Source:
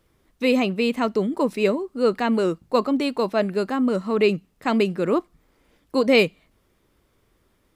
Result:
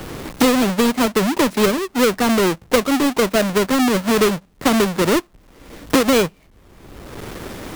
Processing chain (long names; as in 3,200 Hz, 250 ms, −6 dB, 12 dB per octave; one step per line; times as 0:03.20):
each half-wave held at its own peak
multiband upward and downward compressor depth 100%